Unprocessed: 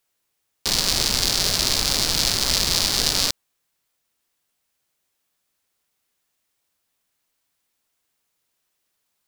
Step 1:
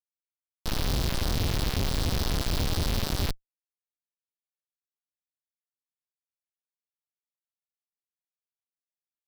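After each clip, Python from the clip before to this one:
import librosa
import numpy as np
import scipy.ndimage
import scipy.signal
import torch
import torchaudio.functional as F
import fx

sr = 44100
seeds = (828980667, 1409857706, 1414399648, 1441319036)

y = fx.schmitt(x, sr, flips_db=-16.0)
y = F.gain(torch.from_numpy(y), 1.5).numpy()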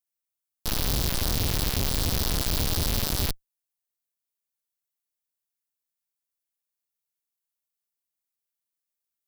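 y = fx.high_shelf(x, sr, hz=6900.0, db=12.0)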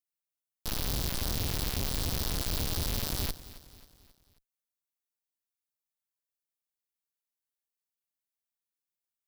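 y = fx.echo_feedback(x, sr, ms=269, feedback_pct=49, wet_db=-17.0)
y = F.gain(torch.from_numpy(y), -6.0).numpy()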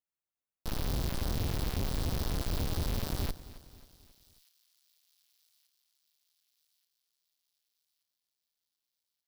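y = fx.high_shelf(x, sr, hz=2100.0, db=-9.5)
y = fx.echo_wet_highpass(y, sr, ms=1180, feedback_pct=54, hz=3600.0, wet_db=-22)
y = F.gain(torch.from_numpy(y), 1.0).numpy()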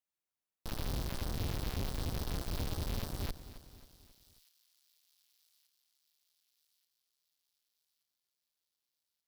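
y = fx.tube_stage(x, sr, drive_db=32.0, bias=0.35)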